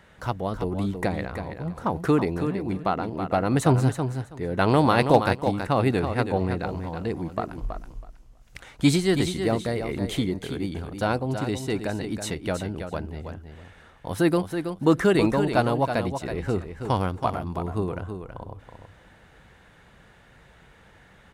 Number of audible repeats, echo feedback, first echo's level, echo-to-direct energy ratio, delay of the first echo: 2, 16%, -8.0 dB, -8.0 dB, 325 ms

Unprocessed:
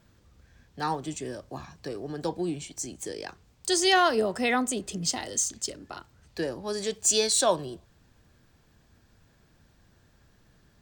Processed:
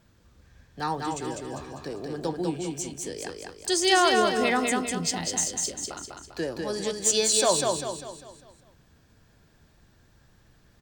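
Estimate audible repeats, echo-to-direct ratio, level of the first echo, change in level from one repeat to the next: 5, -2.5 dB, -3.5 dB, -7.0 dB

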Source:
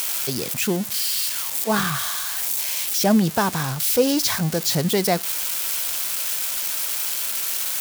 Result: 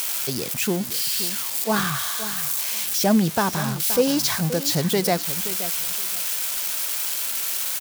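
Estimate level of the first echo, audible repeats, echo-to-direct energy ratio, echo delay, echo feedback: -13.0 dB, 2, -13.0 dB, 524 ms, 20%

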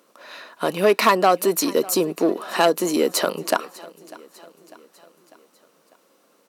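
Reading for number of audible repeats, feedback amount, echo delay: 3, 53%, 598 ms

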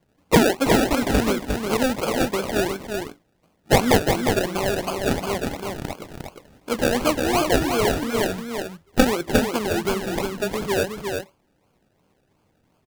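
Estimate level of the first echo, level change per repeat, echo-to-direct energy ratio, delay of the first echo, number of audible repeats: -5.0 dB, no regular repeats, -5.0 dB, 356 ms, 1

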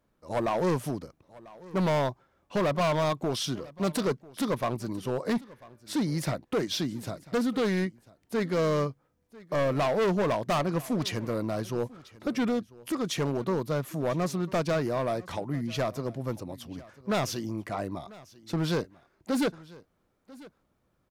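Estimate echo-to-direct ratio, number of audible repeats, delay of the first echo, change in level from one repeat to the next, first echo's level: -21.0 dB, 1, 994 ms, no regular repeats, -21.0 dB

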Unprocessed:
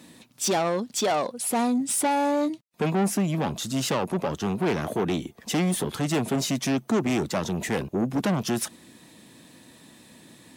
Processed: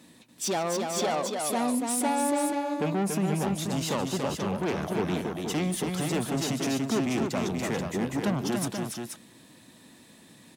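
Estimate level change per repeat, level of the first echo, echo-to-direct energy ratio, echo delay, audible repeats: no regular repeats, -19.5 dB, -2.0 dB, 147 ms, 3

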